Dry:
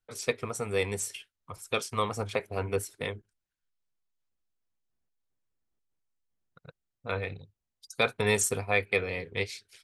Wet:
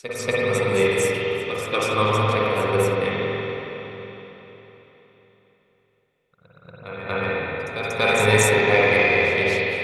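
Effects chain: reverse echo 236 ms -9.5 dB; spring tank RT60 3.9 s, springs 46/56 ms, chirp 50 ms, DRR -7.5 dB; Chebyshev shaper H 2 -17 dB, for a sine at -6.5 dBFS; trim +3.5 dB

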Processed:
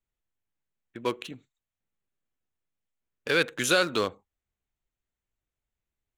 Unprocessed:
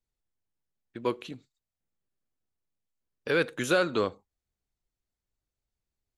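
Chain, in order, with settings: local Wiener filter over 9 samples; treble shelf 2.1 kHz +12 dB; trim -1 dB

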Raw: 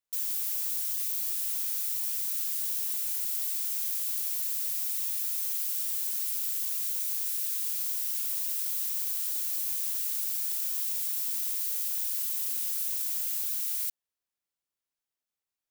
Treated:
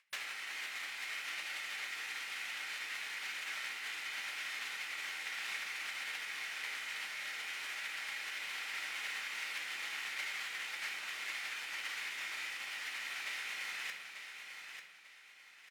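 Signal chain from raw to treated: comb filter that takes the minimum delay 1.8 ms; spectral gate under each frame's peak -15 dB weak; upward compressor, threshold -59 dBFS; band-pass filter 2.1 kHz, Q 2.6; feedback delay 893 ms, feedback 34%, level -7.5 dB; on a send at -2.5 dB: reverberation RT60 0.65 s, pre-delay 4 ms; on the sum: trim +11.5 dB

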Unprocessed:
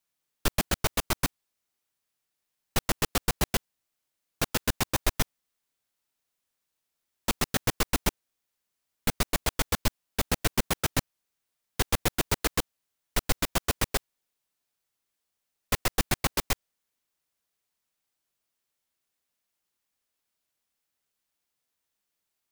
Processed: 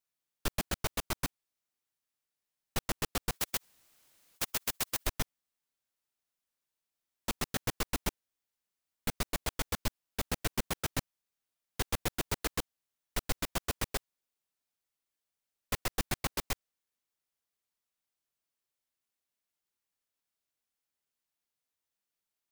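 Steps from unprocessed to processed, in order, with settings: 3.31–5.07 s: spectrum-flattening compressor 4:1; trim -7 dB

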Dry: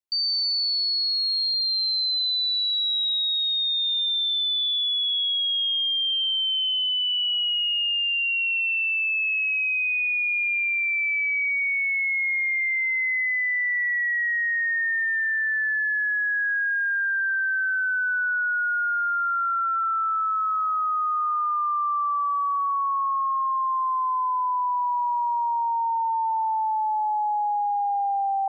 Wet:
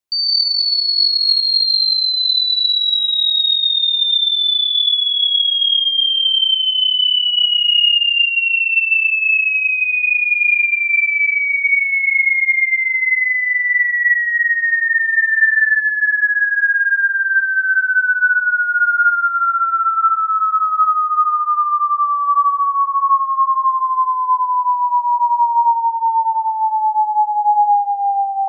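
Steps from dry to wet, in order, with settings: gated-style reverb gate 210 ms rising, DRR 1.5 dB; trim +6.5 dB

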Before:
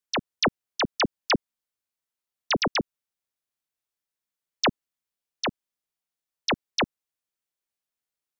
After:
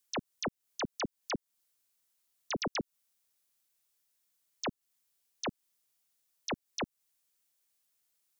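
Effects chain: treble shelf 3.9 kHz +10.5 dB; compression 6:1, threshold -30 dBFS, peak gain reduction 13.5 dB; peak limiter -31 dBFS, peak gain reduction 14 dB; trim +3 dB

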